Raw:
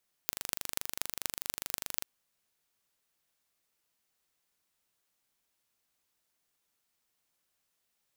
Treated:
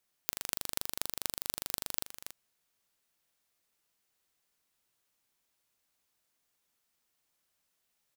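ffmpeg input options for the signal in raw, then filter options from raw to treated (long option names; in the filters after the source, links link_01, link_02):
-f lavfi -i "aevalsrc='0.75*eq(mod(n,1778),0)*(0.5+0.5*eq(mod(n,10668),0))':duration=1.77:sample_rate=44100"
-af "aecho=1:1:282:0.355"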